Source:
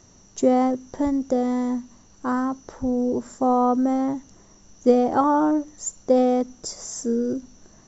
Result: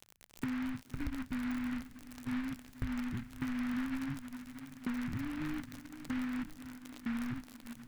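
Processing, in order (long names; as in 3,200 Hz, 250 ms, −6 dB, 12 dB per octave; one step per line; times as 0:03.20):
inverse Chebyshev band-stop filter 650–5,200 Hz, stop band 70 dB
noise gate −45 dBFS, range −34 dB
downward compressor, threshold −43 dBFS, peak gain reduction 11.5 dB
surface crackle 72 per second −42 dBFS
feedback delay with all-pass diffusion 570 ms, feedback 53%, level −12.5 dB
short delay modulated by noise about 1,500 Hz, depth 0.16 ms
level +8.5 dB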